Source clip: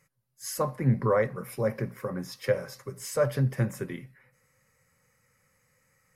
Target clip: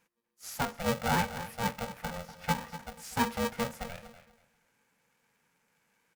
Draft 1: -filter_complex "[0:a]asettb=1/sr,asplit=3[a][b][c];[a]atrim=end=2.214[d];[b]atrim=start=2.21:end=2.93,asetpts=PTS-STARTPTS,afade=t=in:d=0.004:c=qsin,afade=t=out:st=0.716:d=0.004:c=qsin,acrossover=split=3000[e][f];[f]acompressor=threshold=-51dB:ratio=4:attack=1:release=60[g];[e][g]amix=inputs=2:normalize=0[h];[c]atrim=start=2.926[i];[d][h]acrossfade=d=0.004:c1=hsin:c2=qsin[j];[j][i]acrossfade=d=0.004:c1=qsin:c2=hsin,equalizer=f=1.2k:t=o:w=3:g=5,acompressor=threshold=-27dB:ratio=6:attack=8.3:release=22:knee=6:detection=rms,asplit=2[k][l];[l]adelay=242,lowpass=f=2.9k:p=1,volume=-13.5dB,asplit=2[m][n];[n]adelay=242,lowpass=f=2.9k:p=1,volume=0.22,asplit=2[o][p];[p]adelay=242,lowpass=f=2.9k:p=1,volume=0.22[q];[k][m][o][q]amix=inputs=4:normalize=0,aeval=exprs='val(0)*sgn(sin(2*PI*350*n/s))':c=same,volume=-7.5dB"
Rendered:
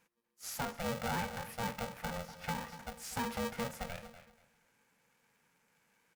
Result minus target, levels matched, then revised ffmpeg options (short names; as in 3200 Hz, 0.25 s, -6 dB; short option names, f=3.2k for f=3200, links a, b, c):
compressor: peak gain reduction +10.5 dB
-filter_complex "[0:a]asettb=1/sr,asplit=3[a][b][c];[a]atrim=end=2.214[d];[b]atrim=start=2.21:end=2.93,asetpts=PTS-STARTPTS,afade=t=in:d=0.004:c=qsin,afade=t=out:st=0.716:d=0.004:c=qsin,acrossover=split=3000[e][f];[f]acompressor=threshold=-51dB:ratio=4:attack=1:release=60[g];[e][g]amix=inputs=2:normalize=0[h];[c]atrim=start=2.926[i];[d][h]acrossfade=d=0.004:c1=hsin:c2=qsin[j];[j][i]acrossfade=d=0.004:c1=qsin:c2=hsin,equalizer=f=1.2k:t=o:w=3:g=5,asplit=2[k][l];[l]adelay=242,lowpass=f=2.9k:p=1,volume=-13.5dB,asplit=2[m][n];[n]adelay=242,lowpass=f=2.9k:p=1,volume=0.22,asplit=2[o][p];[p]adelay=242,lowpass=f=2.9k:p=1,volume=0.22[q];[k][m][o][q]amix=inputs=4:normalize=0,aeval=exprs='val(0)*sgn(sin(2*PI*350*n/s))':c=same,volume=-7.5dB"